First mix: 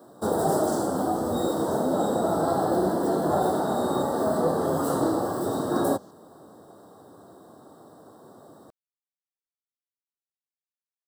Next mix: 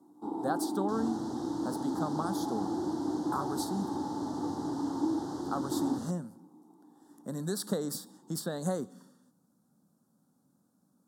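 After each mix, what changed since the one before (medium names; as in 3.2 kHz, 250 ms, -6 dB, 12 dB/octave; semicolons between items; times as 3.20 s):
speech: unmuted; first sound: add vowel filter u; second sound +11.5 dB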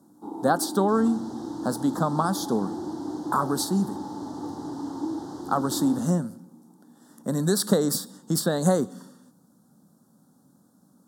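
speech +11.0 dB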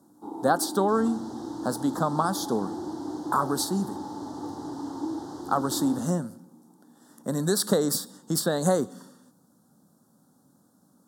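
master: add peaking EQ 190 Hz -4 dB 1.1 oct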